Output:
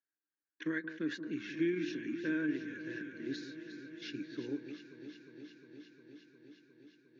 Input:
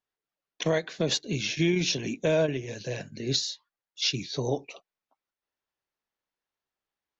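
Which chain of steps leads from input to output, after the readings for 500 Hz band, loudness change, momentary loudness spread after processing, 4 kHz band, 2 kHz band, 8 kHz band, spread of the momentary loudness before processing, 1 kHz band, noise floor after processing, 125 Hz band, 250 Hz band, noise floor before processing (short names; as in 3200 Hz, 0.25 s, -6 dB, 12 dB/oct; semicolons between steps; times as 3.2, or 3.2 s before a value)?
-13.5 dB, -10.5 dB, 20 LU, -21.0 dB, -6.0 dB, n/a, 10 LU, -16.5 dB, under -85 dBFS, -18.5 dB, -4.0 dB, under -85 dBFS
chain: double band-pass 700 Hz, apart 2.4 oct; on a send: echo with dull and thin repeats by turns 0.178 s, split 1100 Hz, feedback 89%, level -10.5 dB; on the sum: gain +1 dB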